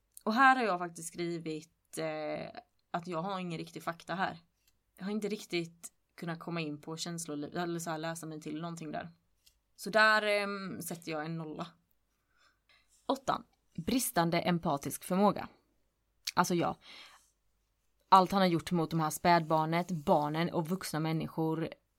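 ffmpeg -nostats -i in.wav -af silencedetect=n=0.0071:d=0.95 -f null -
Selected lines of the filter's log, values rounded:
silence_start: 11.67
silence_end: 13.09 | silence_duration: 1.42
silence_start: 17.06
silence_end: 18.12 | silence_duration: 1.06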